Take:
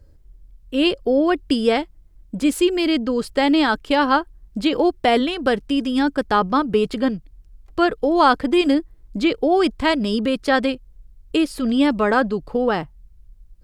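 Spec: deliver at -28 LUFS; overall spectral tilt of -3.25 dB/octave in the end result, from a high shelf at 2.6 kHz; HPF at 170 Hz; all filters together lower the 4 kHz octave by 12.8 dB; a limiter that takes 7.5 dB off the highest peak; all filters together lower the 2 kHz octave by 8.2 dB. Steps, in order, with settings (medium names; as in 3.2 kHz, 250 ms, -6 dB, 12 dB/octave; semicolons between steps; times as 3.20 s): high-pass 170 Hz; peaking EQ 2 kHz -6 dB; treble shelf 2.6 kHz -8.5 dB; peaking EQ 4 kHz -8 dB; trim -5 dB; peak limiter -18.5 dBFS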